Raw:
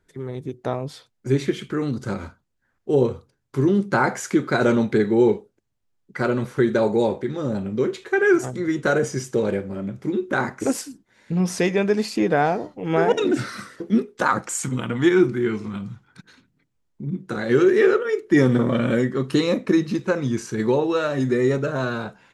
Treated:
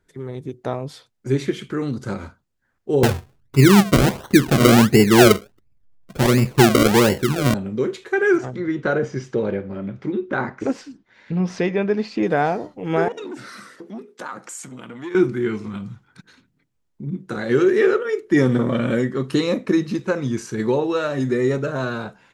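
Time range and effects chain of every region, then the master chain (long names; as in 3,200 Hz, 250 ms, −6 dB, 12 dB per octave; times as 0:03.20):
0:03.03–0:07.54: spectral tilt −3.5 dB per octave + sample-and-hold swept by an LFO 35× 1.4 Hz
0:08.38–0:12.23: high-frequency loss of the air 200 metres + one half of a high-frequency compander encoder only
0:13.08–0:15.15: downward compressor 2 to 1, threshold −37 dBFS + high-pass filter 180 Hz + saturating transformer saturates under 640 Hz
whole clip: no processing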